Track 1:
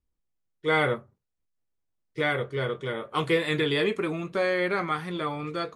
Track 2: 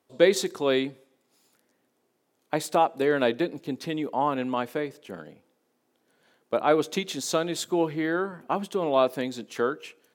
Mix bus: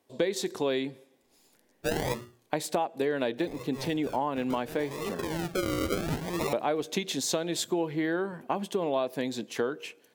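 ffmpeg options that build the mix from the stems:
-filter_complex "[0:a]bandreject=f=60:t=h:w=6,bandreject=f=120:t=h:w=6,bandreject=f=180:t=h:w=6,bandreject=f=240:t=h:w=6,bandreject=f=300:t=h:w=6,bandreject=f=360:t=h:w=6,bandreject=f=420:t=h:w=6,acompressor=threshold=-27dB:ratio=3,acrusher=samples=40:mix=1:aa=0.000001:lfo=1:lforange=24:lforate=0.71,adelay=1200,volume=2.5dB[a];[1:a]equalizer=f=1.3k:t=o:w=0.25:g=-8.5,volume=2dB,asplit=2[b][c];[c]apad=whole_len=306900[d];[a][d]sidechaincompress=threshold=-35dB:ratio=12:attack=8.3:release=472[e];[e][b]amix=inputs=2:normalize=0,acompressor=threshold=-25dB:ratio=6"

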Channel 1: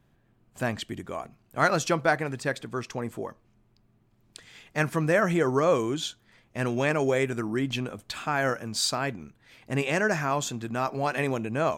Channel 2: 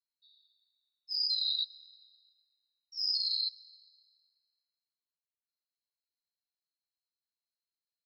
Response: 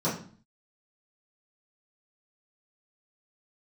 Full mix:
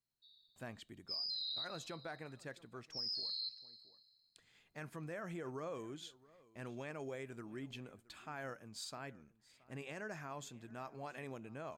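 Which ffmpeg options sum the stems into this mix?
-filter_complex "[0:a]bandreject=f=5.8k:w=16,agate=range=-16dB:threshold=-59dB:ratio=16:detection=peak,alimiter=limit=-17dB:level=0:latency=1:release=53,volume=-19dB,asplit=2[a][b];[b]volume=-22dB[c];[1:a]volume=-1dB[d];[c]aecho=0:1:673:1[e];[a][d][e]amix=inputs=3:normalize=0,alimiter=level_in=10.5dB:limit=-24dB:level=0:latency=1:release=25,volume=-10.5dB"

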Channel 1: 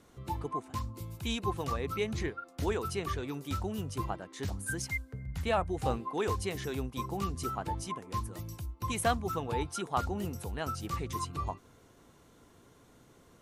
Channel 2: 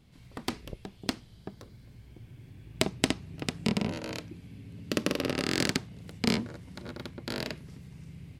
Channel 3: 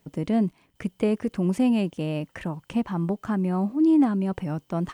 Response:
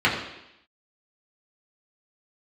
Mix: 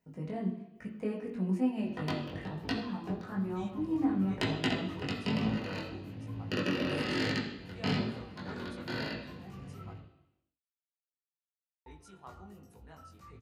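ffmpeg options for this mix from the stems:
-filter_complex "[0:a]flanger=delay=0.4:depth=1.6:regen=-74:speed=1.9:shape=triangular,adelay=2300,volume=-12dB,asplit=3[a][b][c];[a]atrim=end=9.95,asetpts=PTS-STARTPTS,afade=t=out:st=9.946:d=0.004:c=hsin[d];[b]atrim=start=9.95:end=11.86,asetpts=PTS-STARTPTS,volume=0[e];[c]atrim=start=11.86,asetpts=PTS-STARTPTS,afade=t=in:d=0.004:c=hsin[f];[d][e][f]concat=n=3:v=0:a=1,asplit=2[g][h];[h]volume=-19.5dB[i];[1:a]bandreject=f=2.2k:w=10,acompressor=threshold=-46dB:ratio=1.5,aeval=exprs='sgn(val(0))*max(abs(val(0))-0.00316,0)':c=same,adelay=1600,volume=-3dB,asplit=2[j][k];[k]volume=-5dB[l];[2:a]volume=-13dB,asplit=2[m][n];[n]volume=-14.5dB[o];[3:a]atrim=start_sample=2205[p];[i][l][o]amix=inputs=3:normalize=0[q];[q][p]afir=irnorm=-1:irlink=0[r];[g][j][m][r]amix=inputs=4:normalize=0,flanger=delay=18.5:depth=3.2:speed=1.1,bandreject=f=2.2k:w=22"

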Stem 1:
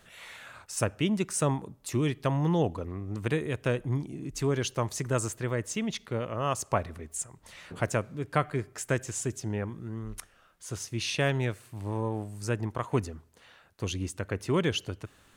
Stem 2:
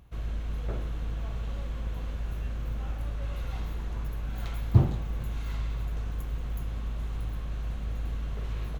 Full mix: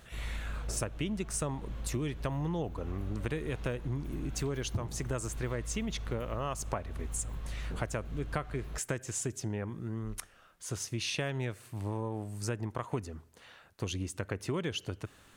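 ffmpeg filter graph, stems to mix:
-filter_complex "[0:a]volume=1dB[a];[1:a]volume=-5dB[b];[a][b]amix=inputs=2:normalize=0,acompressor=threshold=-31dB:ratio=6"

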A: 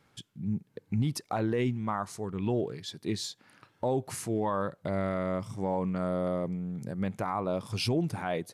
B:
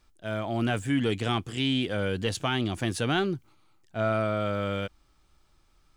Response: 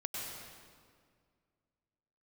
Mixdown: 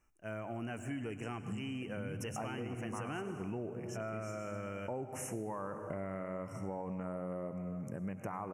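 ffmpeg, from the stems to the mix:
-filter_complex "[0:a]adelay=1050,volume=-4.5dB,asplit=2[a][b];[b]volume=-7.5dB[c];[1:a]volume=-9.5dB,asplit=3[d][e][f];[e]volume=-10dB[g];[f]apad=whole_len=422696[h];[a][h]sidechaincompress=threshold=-44dB:ratio=8:attack=16:release=132[i];[2:a]atrim=start_sample=2205[j];[c][g]amix=inputs=2:normalize=0[k];[k][j]afir=irnorm=-1:irlink=0[l];[i][d][l]amix=inputs=3:normalize=0,asuperstop=centerf=4000:order=20:qfactor=1.7,lowshelf=f=62:g=-6,acompressor=threshold=-37dB:ratio=6"

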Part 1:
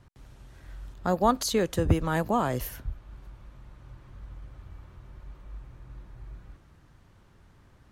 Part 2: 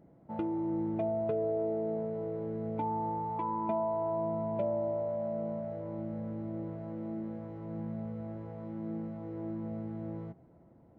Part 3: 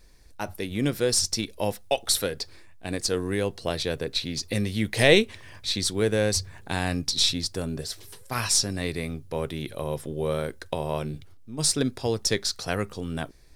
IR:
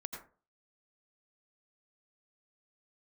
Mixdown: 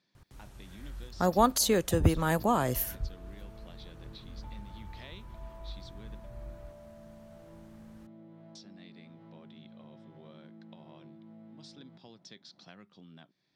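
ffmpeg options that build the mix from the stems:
-filter_complex "[0:a]highshelf=f=7.6k:g=10,adelay=150,volume=-1dB[a];[1:a]crystalizer=i=4.5:c=0,acompressor=threshold=-41dB:ratio=6,adelay=1650,volume=0dB[b];[2:a]volume=-14.5dB,asplit=3[c][d][e];[c]atrim=end=6.15,asetpts=PTS-STARTPTS,afade=t=out:st=6.146:d=0.004:c=hsin[f];[d]atrim=start=6.15:end=8.55,asetpts=PTS-STARTPTS,volume=0[g];[e]atrim=start=8.55,asetpts=PTS-STARTPTS,afade=t=in:d=0.004:c=hsin[h];[f][g][h]concat=n=3:v=0:a=1[i];[b][i]amix=inputs=2:normalize=0,highpass=f=140:w=0.5412,highpass=f=140:w=1.3066,equalizer=f=190:t=q:w=4:g=7,equalizer=f=460:t=q:w=4:g=-9,equalizer=f=3.4k:t=q:w=4:g=7,lowpass=f=5.2k:w=0.5412,lowpass=f=5.2k:w=1.3066,acompressor=threshold=-52dB:ratio=3,volume=0dB[j];[a][j]amix=inputs=2:normalize=0"

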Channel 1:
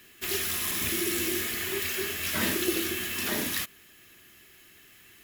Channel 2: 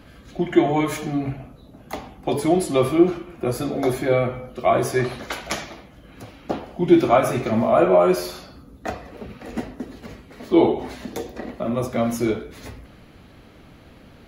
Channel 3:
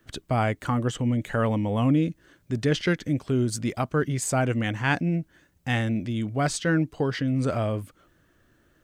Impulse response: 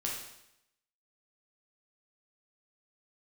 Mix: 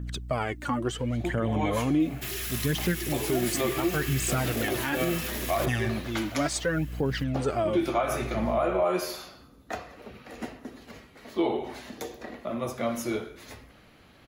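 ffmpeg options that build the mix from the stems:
-filter_complex "[0:a]alimiter=level_in=1.5dB:limit=-24dB:level=0:latency=1:release=19,volume=-1.5dB,adelay=2000,volume=0.5dB[a];[1:a]lowshelf=f=490:g=-8,adelay=850,volume=-4.5dB,asplit=2[b][c];[c]volume=-15.5dB[d];[2:a]highpass=120,aeval=exprs='val(0)+0.0112*(sin(2*PI*60*n/s)+sin(2*PI*2*60*n/s)/2+sin(2*PI*3*60*n/s)/3+sin(2*PI*4*60*n/s)/4+sin(2*PI*5*60*n/s)/5)':c=same,aphaser=in_gain=1:out_gain=1:delay=3.7:decay=0.64:speed=0.71:type=triangular,volume=-2.5dB,asplit=2[e][f];[f]apad=whole_len=666933[g];[b][g]sidechaincompress=threshold=-28dB:ratio=8:attack=38:release=149[h];[3:a]atrim=start_sample=2205[i];[d][i]afir=irnorm=-1:irlink=0[j];[a][h][e][j]amix=inputs=4:normalize=0,alimiter=limit=-16.5dB:level=0:latency=1:release=106"

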